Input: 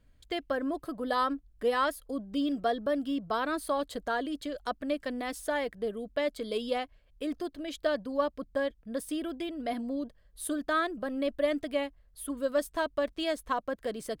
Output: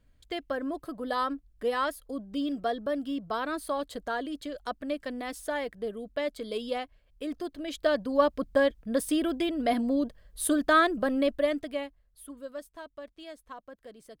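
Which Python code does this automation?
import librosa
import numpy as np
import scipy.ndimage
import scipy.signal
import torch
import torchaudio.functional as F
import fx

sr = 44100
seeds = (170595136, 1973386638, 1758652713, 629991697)

y = fx.gain(x, sr, db=fx.line((7.29, -1.0), (8.38, 7.0), (11.1, 7.0), (11.62, -1.0), (12.75, -13.5)))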